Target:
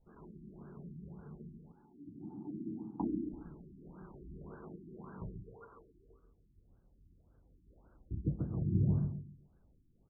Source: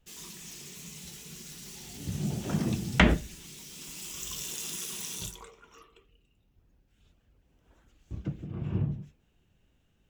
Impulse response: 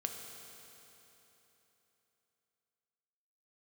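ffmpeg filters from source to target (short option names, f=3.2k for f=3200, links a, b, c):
-filter_complex "[0:a]asettb=1/sr,asplit=3[a][b][c];[a]atrim=end=1.584[d];[b]atrim=start=1.58:end=3.32,asetpts=PTS-STARTPTS,afade=t=in:d=0.004:c=qsin,afade=t=out:st=1.736:d=0.004:c=qsin,asplit=3[e][f][g];[e]bandpass=f=300:t=q:w=8,volume=0dB[h];[f]bandpass=f=870:t=q:w=8,volume=-6dB[i];[g]bandpass=f=2.24k:t=q:w=8,volume=-9dB[j];[h][i][j]amix=inputs=3:normalize=0[k];[c]atrim=start=3.316[l];[d][k]acrossfade=d=0.004:c1=hsin:c2=qsin[m];[m][l]acrossfade=d=0.004:c1=qsin:c2=hsin,aecho=1:1:138|276|414|552:0.708|0.198|0.0555|0.0155,afftfilt=real='re*lt(b*sr/1024,370*pow(1700/370,0.5+0.5*sin(2*PI*1.8*pts/sr)))':imag='im*lt(b*sr/1024,370*pow(1700/370,0.5+0.5*sin(2*PI*1.8*pts/sr)))':win_size=1024:overlap=0.75,volume=-1dB"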